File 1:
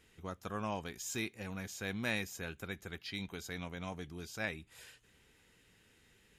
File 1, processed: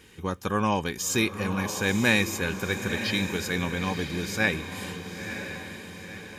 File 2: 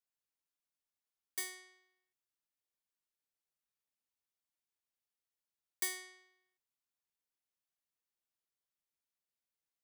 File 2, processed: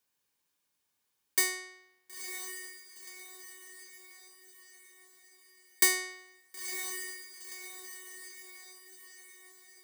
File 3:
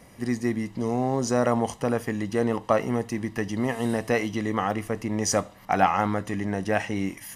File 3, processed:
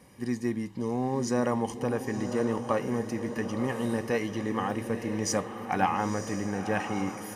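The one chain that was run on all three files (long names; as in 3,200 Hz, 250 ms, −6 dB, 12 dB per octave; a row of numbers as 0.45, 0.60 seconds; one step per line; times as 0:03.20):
notch comb filter 670 Hz
feedback delay with all-pass diffusion 975 ms, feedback 51%, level −8.5 dB
normalise the peak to −9 dBFS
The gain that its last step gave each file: +14.5, +14.0, −3.5 decibels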